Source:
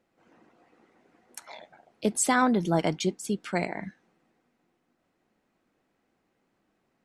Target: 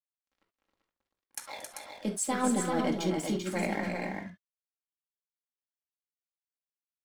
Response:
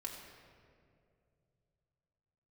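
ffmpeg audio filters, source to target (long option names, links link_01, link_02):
-filter_complex "[0:a]areverse,acompressor=threshold=-32dB:ratio=6,areverse,aeval=exprs='sgn(val(0))*max(abs(val(0))-0.00251,0)':channel_layout=same,aecho=1:1:228|269|390:0.126|0.531|0.531[link_01];[1:a]atrim=start_sample=2205,atrim=end_sample=3528[link_02];[link_01][link_02]afir=irnorm=-1:irlink=0,volume=8.5dB"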